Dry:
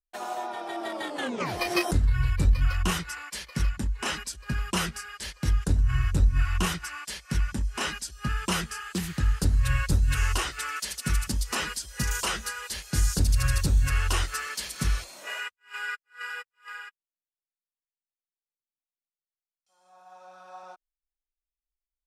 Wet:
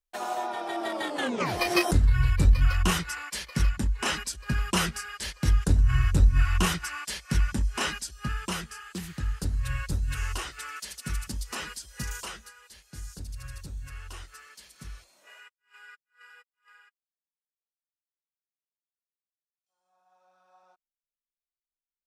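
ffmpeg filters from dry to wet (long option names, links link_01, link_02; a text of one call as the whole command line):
ffmpeg -i in.wav -af "volume=2dB,afade=type=out:start_time=7.68:duration=0.94:silence=0.398107,afade=type=out:start_time=12.04:duration=0.47:silence=0.298538" out.wav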